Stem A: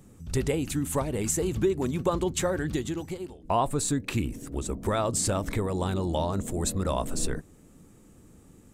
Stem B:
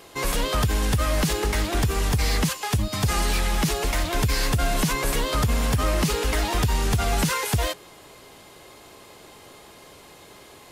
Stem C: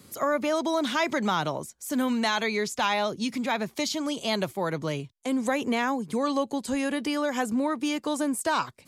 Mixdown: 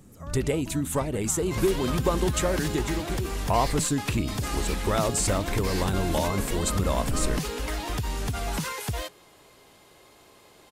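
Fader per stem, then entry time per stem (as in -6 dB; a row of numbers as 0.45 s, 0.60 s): +1.0 dB, -7.5 dB, -19.0 dB; 0.00 s, 1.35 s, 0.00 s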